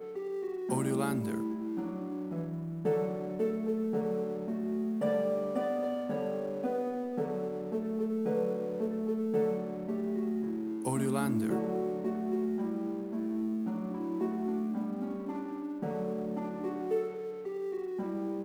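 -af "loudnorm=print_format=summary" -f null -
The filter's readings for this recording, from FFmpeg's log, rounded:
Input Integrated:    -34.0 LUFS
Input True Peak:     -17.5 dBTP
Input LRA:             3.1 LU
Input Threshold:     -44.0 LUFS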